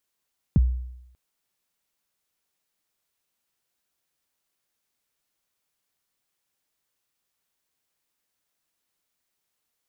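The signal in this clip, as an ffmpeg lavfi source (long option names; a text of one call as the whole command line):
ffmpeg -f lavfi -i "aevalsrc='0.251*pow(10,-3*t/0.83)*sin(2*PI*(230*0.025/log(62/230)*(exp(log(62/230)*min(t,0.025)/0.025)-1)+62*max(t-0.025,0)))':duration=0.59:sample_rate=44100" out.wav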